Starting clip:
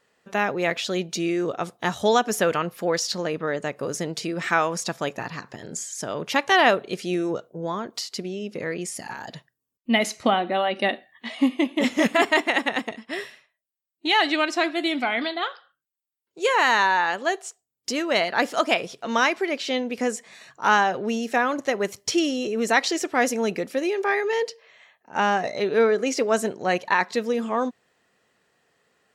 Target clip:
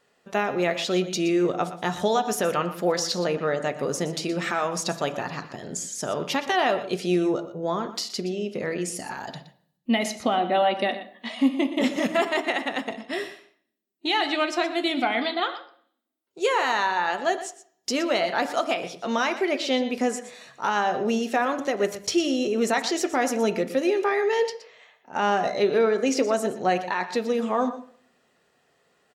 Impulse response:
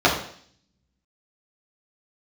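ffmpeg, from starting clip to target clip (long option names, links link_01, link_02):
-filter_complex "[0:a]alimiter=limit=-14.5dB:level=0:latency=1:release=225,aecho=1:1:120:0.211,asplit=2[link_01][link_02];[1:a]atrim=start_sample=2205[link_03];[link_02][link_03]afir=irnorm=-1:irlink=0,volume=-29dB[link_04];[link_01][link_04]amix=inputs=2:normalize=0"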